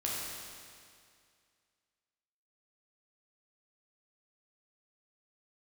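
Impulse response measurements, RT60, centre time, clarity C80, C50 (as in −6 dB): 2.2 s, 131 ms, 0.0 dB, −2.0 dB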